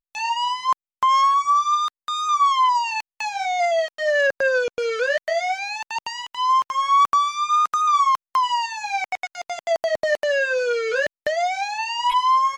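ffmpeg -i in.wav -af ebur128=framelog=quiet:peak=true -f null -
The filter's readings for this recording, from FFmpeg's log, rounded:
Integrated loudness:
  I:         -21.0 LUFS
  Threshold: -31.0 LUFS
Loudness range:
  LRA:         3.0 LU
  Threshold: -41.0 LUFS
  LRA low:   -22.9 LUFS
  LRA high:  -19.9 LUFS
True peak:
  Peak:      -10.3 dBFS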